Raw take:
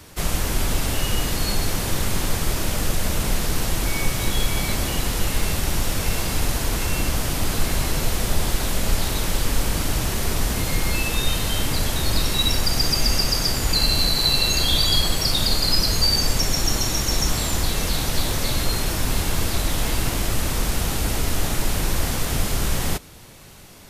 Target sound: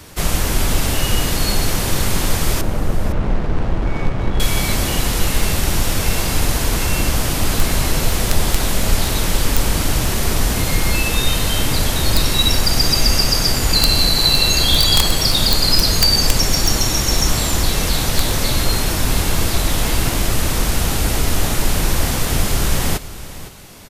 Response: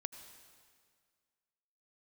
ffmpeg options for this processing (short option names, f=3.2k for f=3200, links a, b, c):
-filter_complex "[0:a]aeval=exprs='(mod(2.37*val(0)+1,2)-1)/2.37':c=same,asettb=1/sr,asplit=3[a][b][c];[a]atrim=end=2.614[d];[b]atrim=start=2.61:end=4.4,asetpts=PTS-STARTPTS,afade=t=in:d=0.004:c=qsin,afade=t=out:st=1.786:d=0.004:c=qsin,adynamicsmooth=sensitivity=1:basefreq=870[e];[c]atrim=start=4.396[f];[d][e]acrossfade=d=0.004:c1=hsin:c2=qsin[g];[g][f]acrossfade=d=0.004:c1=qsin:c2=hsin,aecho=1:1:511:0.168,volume=5dB"